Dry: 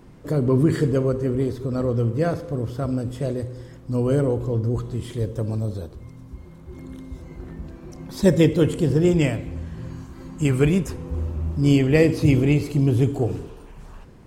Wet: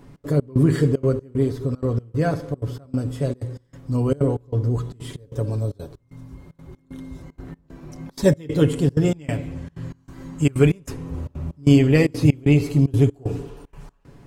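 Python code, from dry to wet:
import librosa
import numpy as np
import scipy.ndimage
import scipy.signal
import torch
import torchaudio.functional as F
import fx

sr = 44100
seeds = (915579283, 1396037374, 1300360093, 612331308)

y = x + 0.51 * np.pad(x, (int(7.1 * sr / 1000.0), 0))[:len(x)]
y = fx.step_gate(y, sr, bpm=189, pattern='xx.xx..xxx', floor_db=-24.0, edge_ms=4.5)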